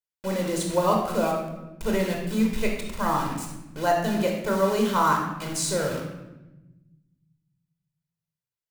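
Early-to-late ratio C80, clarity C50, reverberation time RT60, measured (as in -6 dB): 6.0 dB, 3.5 dB, 1.0 s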